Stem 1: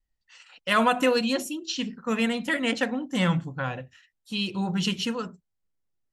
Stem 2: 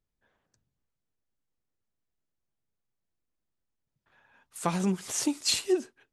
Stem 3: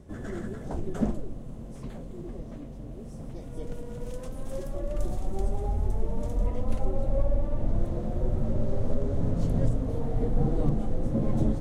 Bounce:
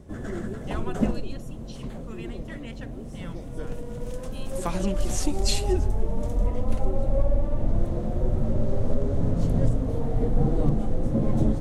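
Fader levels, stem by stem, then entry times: −18.0, −1.5, +3.0 decibels; 0.00, 0.00, 0.00 seconds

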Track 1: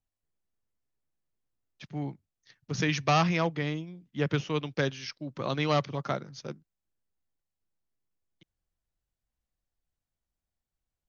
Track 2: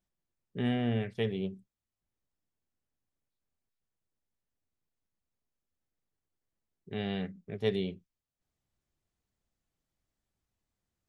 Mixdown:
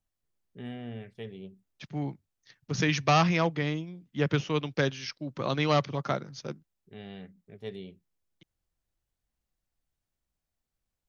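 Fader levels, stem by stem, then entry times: +1.5, −9.5 decibels; 0.00, 0.00 seconds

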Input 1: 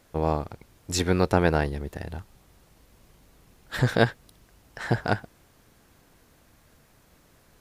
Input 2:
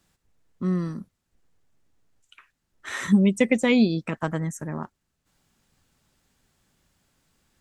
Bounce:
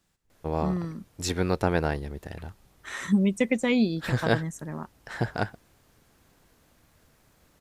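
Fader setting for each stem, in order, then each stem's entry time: −3.5, −4.0 decibels; 0.30, 0.00 seconds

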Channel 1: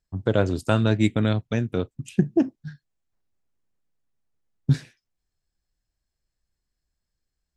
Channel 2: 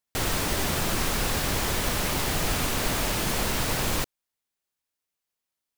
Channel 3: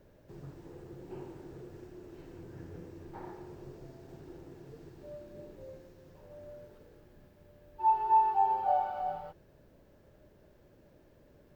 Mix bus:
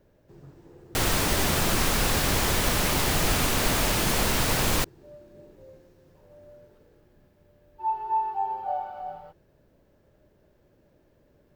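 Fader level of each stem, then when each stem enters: muted, +2.5 dB, −1.5 dB; muted, 0.80 s, 0.00 s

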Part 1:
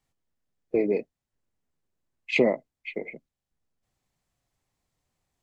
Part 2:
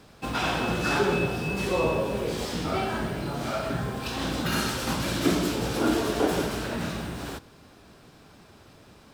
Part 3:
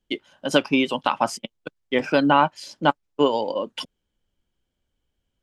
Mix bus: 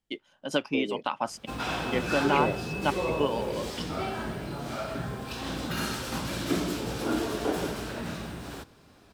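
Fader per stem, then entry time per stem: −9.0, −4.5, −8.5 decibels; 0.00, 1.25, 0.00 seconds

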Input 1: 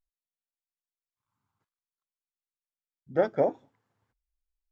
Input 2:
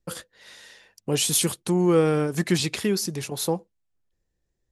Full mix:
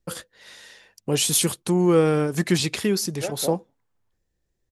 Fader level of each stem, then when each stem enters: −6.5, +1.5 decibels; 0.05, 0.00 seconds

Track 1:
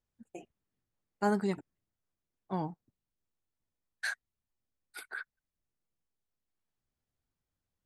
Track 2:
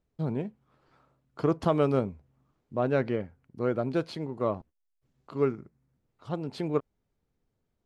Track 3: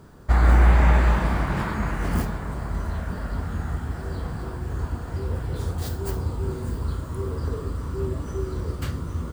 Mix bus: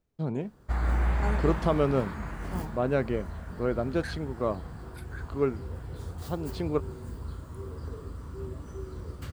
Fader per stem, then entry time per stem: −6.0, −0.5, −10.5 decibels; 0.00, 0.00, 0.40 seconds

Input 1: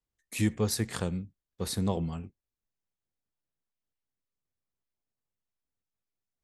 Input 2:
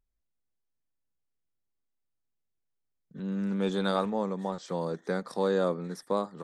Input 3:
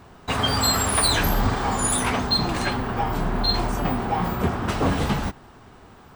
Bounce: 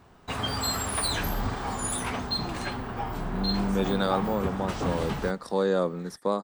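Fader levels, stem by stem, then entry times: −18.0, +2.0, −8.0 decibels; 0.00, 0.15, 0.00 seconds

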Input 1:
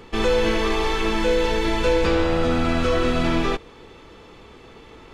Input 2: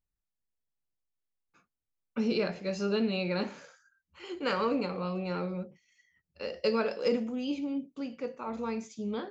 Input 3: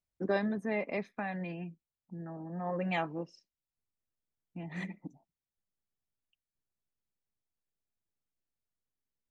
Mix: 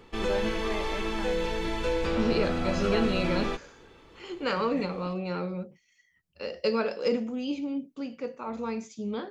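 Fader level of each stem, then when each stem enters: −9.0, +1.5, −4.0 decibels; 0.00, 0.00, 0.00 seconds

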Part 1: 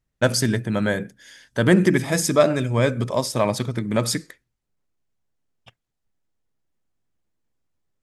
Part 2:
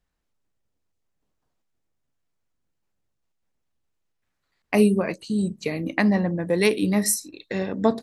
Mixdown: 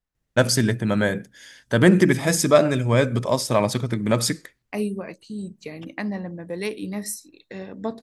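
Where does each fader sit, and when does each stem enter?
+1.0, −8.5 decibels; 0.15, 0.00 seconds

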